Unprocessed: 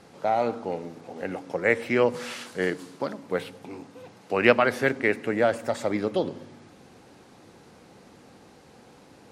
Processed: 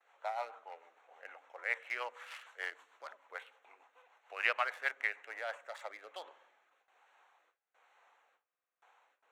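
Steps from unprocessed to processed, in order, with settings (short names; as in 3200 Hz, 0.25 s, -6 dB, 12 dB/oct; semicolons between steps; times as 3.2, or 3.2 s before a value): Wiener smoothing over 9 samples; rotary speaker horn 6.7 Hz, later 1.2 Hz, at 5.17; HPF 820 Hz 24 dB/oct; gate with hold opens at -57 dBFS; stuck buffer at 8.45, samples 2048, times 7; gain -5.5 dB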